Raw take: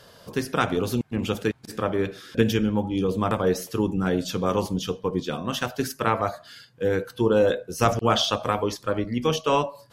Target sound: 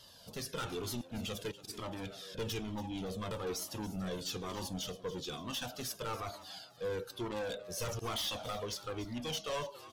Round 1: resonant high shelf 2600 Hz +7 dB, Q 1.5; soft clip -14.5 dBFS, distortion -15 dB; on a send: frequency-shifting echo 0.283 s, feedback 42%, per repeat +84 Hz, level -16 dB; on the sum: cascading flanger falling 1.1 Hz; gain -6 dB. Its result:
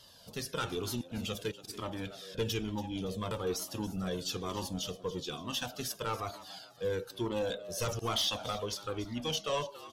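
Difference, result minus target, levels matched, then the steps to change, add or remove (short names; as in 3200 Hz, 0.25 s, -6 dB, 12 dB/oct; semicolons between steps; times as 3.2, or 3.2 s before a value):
soft clip: distortion -7 dB
change: soft clip -23.5 dBFS, distortion -7 dB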